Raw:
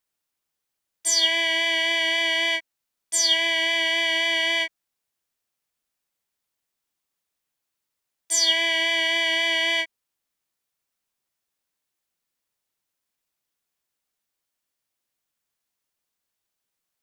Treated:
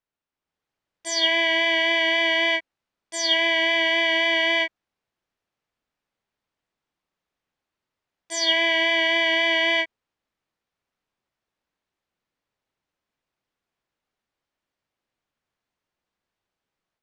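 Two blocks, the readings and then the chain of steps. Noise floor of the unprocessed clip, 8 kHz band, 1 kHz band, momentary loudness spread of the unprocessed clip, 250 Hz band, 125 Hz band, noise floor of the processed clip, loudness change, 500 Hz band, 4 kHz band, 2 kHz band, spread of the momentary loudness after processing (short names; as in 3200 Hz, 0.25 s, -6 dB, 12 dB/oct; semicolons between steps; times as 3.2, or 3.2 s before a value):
-83 dBFS, -8.5 dB, +5.0 dB, 7 LU, +6.0 dB, n/a, under -85 dBFS, +1.0 dB, +5.5 dB, -1.0 dB, +2.0 dB, 8 LU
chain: tape spacing loss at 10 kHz 24 dB; AGC gain up to 7 dB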